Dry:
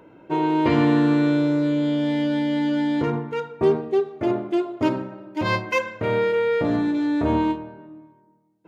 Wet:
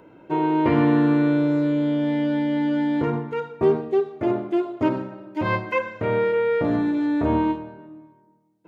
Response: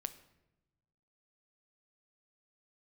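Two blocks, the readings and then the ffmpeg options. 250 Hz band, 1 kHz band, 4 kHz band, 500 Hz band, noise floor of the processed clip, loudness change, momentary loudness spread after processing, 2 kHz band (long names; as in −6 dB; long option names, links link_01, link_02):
0.0 dB, 0.0 dB, −6.0 dB, 0.0 dB, −57 dBFS, 0.0 dB, 8 LU, −1.5 dB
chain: -filter_complex "[0:a]acrossover=split=2700[link_01][link_02];[link_02]acompressor=threshold=-53dB:ratio=4:attack=1:release=60[link_03];[link_01][link_03]amix=inputs=2:normalize=0"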